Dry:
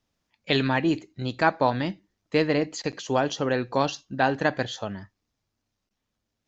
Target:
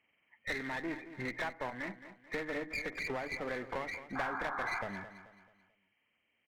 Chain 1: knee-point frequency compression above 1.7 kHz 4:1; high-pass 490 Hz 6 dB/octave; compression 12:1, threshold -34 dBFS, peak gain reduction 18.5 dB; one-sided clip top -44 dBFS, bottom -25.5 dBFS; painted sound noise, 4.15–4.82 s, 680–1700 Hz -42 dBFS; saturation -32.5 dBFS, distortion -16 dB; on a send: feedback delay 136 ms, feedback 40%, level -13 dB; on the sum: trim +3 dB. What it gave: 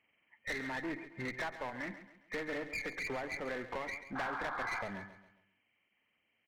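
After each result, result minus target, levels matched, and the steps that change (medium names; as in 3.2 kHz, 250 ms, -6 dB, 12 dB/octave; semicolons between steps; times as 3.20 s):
saturation: distortion +12 dB; echo 82 ms early
change: saturation -24.5 dBFS, distortion -28 dB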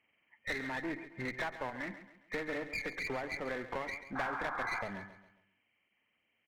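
echo 82 ms early
change: feedback delay 218 ms, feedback 40%, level -13 dB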